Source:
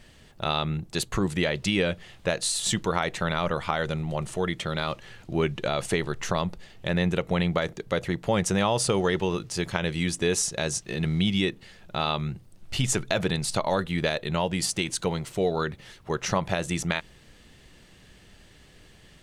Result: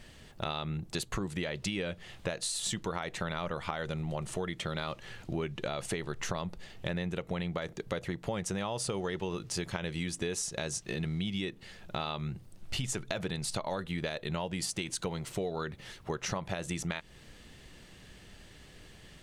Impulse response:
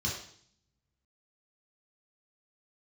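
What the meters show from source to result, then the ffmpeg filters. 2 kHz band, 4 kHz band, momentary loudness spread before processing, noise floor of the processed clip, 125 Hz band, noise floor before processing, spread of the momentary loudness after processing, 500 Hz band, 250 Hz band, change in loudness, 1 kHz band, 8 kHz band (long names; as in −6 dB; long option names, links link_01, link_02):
−9.0 dB, −8.0 dB, 6 LU, −55 dBFS, −8.0 dB, −54 dBFS, 19 LU, −9.5 dB, −8.5 dB, −8.5 dB, −9.5 dB, −7.0 dB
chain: -af "acompressor=threshold=-32dB:ratio=5"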